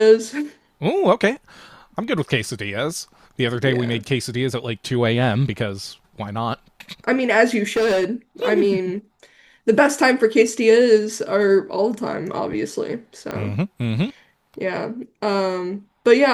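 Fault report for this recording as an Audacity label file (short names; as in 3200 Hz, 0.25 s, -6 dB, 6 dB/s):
7.760000	8.050000	clipped -15 dBFS
13.310000	13.310000	pop -13 dBFS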